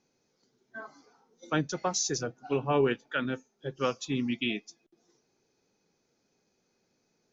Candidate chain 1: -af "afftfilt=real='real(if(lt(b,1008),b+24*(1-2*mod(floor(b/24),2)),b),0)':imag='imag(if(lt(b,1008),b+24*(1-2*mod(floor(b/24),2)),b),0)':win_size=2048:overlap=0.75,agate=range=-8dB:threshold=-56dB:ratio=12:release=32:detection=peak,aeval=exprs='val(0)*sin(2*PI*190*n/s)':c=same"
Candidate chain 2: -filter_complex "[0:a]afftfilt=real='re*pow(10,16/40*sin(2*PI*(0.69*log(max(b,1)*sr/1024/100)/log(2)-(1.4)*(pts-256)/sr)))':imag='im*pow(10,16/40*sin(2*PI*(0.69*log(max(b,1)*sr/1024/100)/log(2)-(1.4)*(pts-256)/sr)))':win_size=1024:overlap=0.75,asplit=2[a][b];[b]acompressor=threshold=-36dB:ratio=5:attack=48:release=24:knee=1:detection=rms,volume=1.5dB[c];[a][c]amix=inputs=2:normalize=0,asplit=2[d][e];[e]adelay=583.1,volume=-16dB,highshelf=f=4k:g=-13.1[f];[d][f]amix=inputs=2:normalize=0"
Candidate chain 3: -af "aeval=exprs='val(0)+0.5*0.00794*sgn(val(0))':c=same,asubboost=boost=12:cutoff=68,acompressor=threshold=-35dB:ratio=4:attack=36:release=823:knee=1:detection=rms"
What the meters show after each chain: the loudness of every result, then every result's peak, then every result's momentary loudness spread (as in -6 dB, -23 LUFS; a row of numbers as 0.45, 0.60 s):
-34.0, -24.0, -41.5 LUFS; -16.0, -7.5, -22.5 dBFS; 20, 18, 10 LU